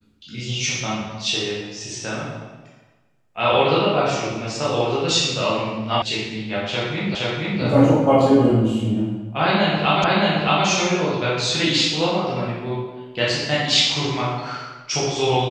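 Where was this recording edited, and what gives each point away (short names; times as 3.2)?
6.02 sound cut off
7.15 repeat of the last 0.47 s
10.04 repeat of the last 0.62 s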